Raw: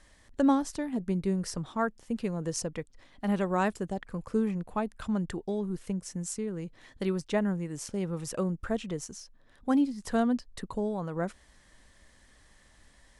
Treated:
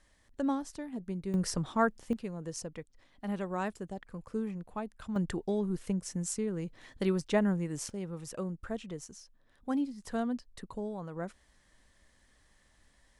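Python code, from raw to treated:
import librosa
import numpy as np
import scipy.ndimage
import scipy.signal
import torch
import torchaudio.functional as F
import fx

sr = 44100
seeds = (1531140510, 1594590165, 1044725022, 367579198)

y = fx.gain(x, sr, db=fx.steps((0.0, -7.5), (1.34, 2.0), (2.13, -7.0), (5.16, 0.5), (7.9, -6.5)))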